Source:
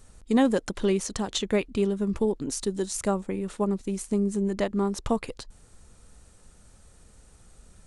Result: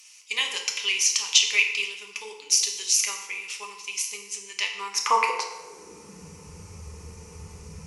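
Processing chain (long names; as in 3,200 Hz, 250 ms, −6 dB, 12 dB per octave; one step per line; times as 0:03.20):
EQ curve with evenly spaced ripples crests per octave 0.8, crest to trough 13 dB
high-pass filter sweep 3,000 Hz → 90 Hz, 0:04.72–0:06.49
feedback delay network reverb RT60 1.1 s, low-frequency decay 0.8×, high-frequency decay 0.7×, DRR 1.5 dB
level +8 dB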